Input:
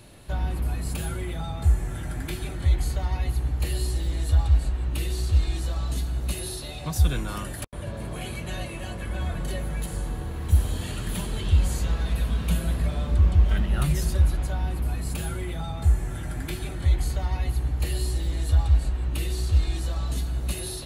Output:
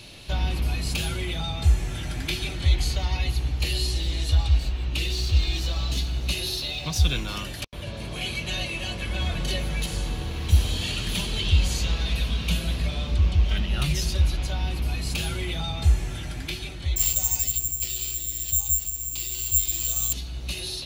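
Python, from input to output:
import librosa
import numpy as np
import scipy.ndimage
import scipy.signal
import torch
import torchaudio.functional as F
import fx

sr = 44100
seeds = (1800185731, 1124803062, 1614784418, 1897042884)

y = fx.resample_linear(x, sr, factor=2, at=(4.6, 7.83))
y = fx.resample_bad(y, sr, factor=6, down='none', up='zero_stuff', at=(16.96, 20.13))
y = fx.band_shelf(y, sr, hz=3800.0, db=11.5, octaves=1.7)
y = fx.rider(y, sr, range_db=10, speed_s=2.0)
y = y * librosa.db_to_amplitude(-8.5)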